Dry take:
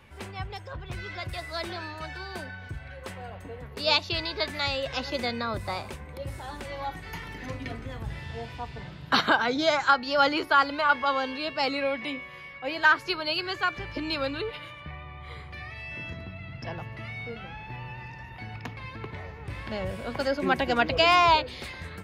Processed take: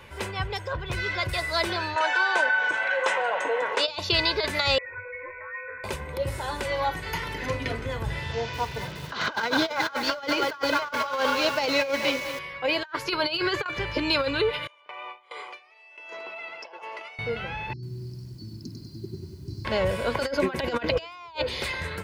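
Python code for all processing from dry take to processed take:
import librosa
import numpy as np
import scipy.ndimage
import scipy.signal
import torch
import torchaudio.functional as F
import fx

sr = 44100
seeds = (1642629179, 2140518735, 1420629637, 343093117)

y = fx.chain(x, sr, fx.cabinet(low_hz=360.0, low_slope=24, high_hz=7500.0, hz=(390.0, 890.0, 1500.0, 4600.0), db=(-9, 5, 3, -10)),
    fx.env_flatten(amount_pct=50), at=(1.96, 3.88))
y = fx.chain(y, sr, fx.stiff_resonator(f0_hz=300.0, decay_s=0.39, stiffness=0.03),
    fx.freq_invert(carrier_hz=2500),
    fx.env_flatten(amount_pct=50), at=(4.78, 5.84))
y = fx.chain(y, sr, fx.cvsd(bps=32000),
    fx.highpass(hz=57.0, slope=12),
    fx.echo_crushed(ms=212, feedback_pct=55, bits=7, wet_db=-11), at=(8.32, 12.39))
y = fx.chain(y, sr, fx.high_shelf(hz=4700.0, db=-5.5),
    fx.over_compress(threshold_db=-34.0, ratio=-0.5), at=(13.23, 13.66))
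y = fx.chain(y, sr, fx.gate_hold(open_db=-29.0, close_db=-40.0, hold_ms=71.0, range_db=-21, attack_ms=1.4, release_ms=100.0),
    fx.cabinet(low_hz=430.0, low_slope=24, high_hz=9100.0, hz=(550.0, 840.0, 1800.0, 3900.0), db=(-4, 3, -10, -8)),
    fx.over_compress(threshold_db=-48.0, ratio=-1.0), at=(14.67, 17.19))
y = fx.chain(y, sr, fx.brickwall_bandstop(low_hz=400.0, high_hz=4000.0),
    fx.cabinet(low_hz=120.0, low_slope=12, high_hz=5600.0, hz=(560.0, 940.0, 3300.0), db=(5, -9, -8)),
    fx.echo_crushed(ms=97, feedback_pct=55, bits=11, wet_db=-4.5), at=(17.73, 19.65))
y = fx.low_shelf(y, sr, hz=150.0, db=-7.0)
y = y + 0.37 * np.pad(y, (int(2.0 * sr / 1000.0), 0))[:len(y)]
y = fx.over_compress(y, sr, threshold_db=-29.0, ratio=-0.5)
y = y * 10.0 ** (4.5 / 20.0)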